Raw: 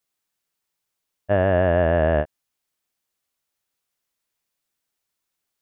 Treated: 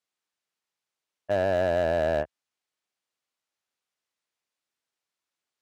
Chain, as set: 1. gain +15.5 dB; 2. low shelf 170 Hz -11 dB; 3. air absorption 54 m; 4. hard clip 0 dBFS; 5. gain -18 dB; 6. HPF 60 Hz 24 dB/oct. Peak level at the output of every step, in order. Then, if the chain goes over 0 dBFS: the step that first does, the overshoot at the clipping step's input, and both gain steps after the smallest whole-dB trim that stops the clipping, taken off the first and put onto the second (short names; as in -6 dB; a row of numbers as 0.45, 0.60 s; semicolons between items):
+7.5, +7.0, +7.0, 0.0, -18.0, -15.0 dBFS; step 1, 7.0 dB; step 1 +8.5 dB, step 5 -11 dB